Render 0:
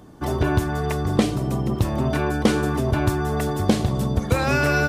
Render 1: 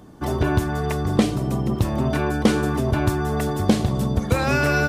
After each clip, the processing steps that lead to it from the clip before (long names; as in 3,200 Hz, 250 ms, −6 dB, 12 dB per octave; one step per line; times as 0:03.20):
parametric band 210 Hz +2 dB 0.44 octaves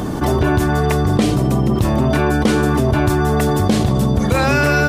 envelope flattener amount 70%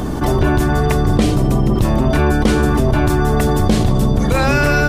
sub-octave generator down 2 octaves, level −2 dB